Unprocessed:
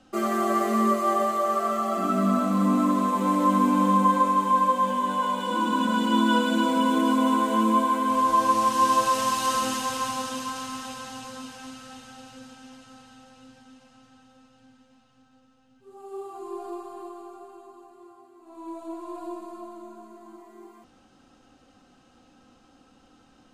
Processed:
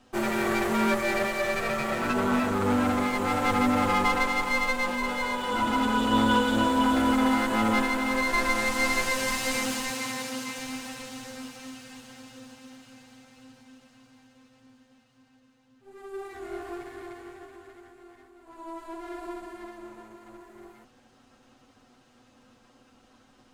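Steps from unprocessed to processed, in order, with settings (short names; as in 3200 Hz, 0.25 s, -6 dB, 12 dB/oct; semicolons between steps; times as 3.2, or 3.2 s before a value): minimum comb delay 8.1 ms; 9.9–10.59 HPF 91 Hz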